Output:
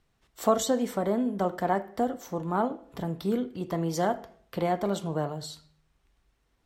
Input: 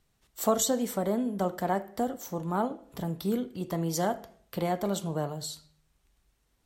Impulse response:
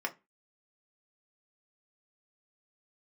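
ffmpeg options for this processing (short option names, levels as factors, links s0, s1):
-filter_complex "[0:a]highshelf=f=6700:g=-12,asplit=2[s0][s1];[1:a]atrim=start_sample=2205[s2];[s1][s2]afir=irnorm=-1:irlink=0,volume=0.168[s3];[s0][s3]amix=inputs=2:normalize=0,volume=1.12"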